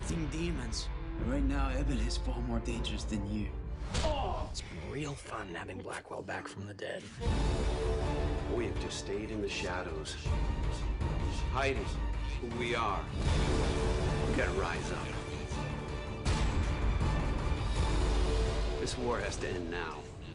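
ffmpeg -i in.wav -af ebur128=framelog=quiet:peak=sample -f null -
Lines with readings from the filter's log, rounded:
Integrated loudness:
  I:         -35.2 LUFS
  Threshold: -45.2 LUFS
Loudness range:
  LRA:         4.7 LU
  Threshold: -55.2 LUFS
  LRA low:   -38.1 LUFS
  LRA high:  -33.4 LUFS
Sample peak:
  Peak:      -19.8 dBFS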